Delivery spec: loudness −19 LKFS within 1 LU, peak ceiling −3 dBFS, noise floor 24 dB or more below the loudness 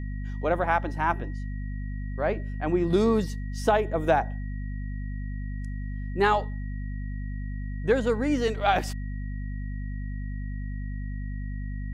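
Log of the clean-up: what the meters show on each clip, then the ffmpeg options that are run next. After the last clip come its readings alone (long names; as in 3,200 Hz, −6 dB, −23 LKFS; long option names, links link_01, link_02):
mains hum 50 Hz; hum harmonics up to 250 Hz; level of the hum −30 dBFS; interfering tone 1,900 Hz; level of the tone −49 dBFS; integrated loudness −29.0 LKFS; sample peak −10.5 dBFS; target loudness −19.0 LKFS
→ -af "bandreject=frequency=50:width_type=h:width=4,bandreject=frequency=100:width_type=h:width=4,bandreject=frequency=150:width_type=h:width=4,bandreject=frequency=200:width_type=h:width=4,bandreject=frequency=250:width_type=h:width=4"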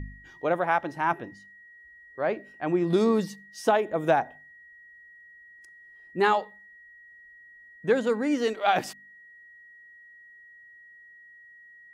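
mains hum none found; interfering tone 1,900 Hz; level of the tone −49 dBFS
→ -af "bandreject=frequency=1900:width=30"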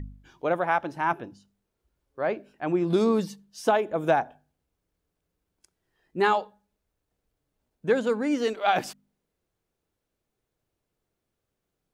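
interfering tone none found; integrated loudness −26.5 LKFS; sample peak −11.0 dBFS; target loudness −19.0 LKFS
→ -af "volume=7.5dB"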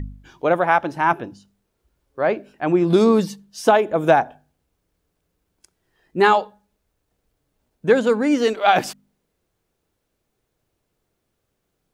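integrated loudness −19.0 LKFS; sample peak −3.5 dBFS; background noise floor −75 dBFS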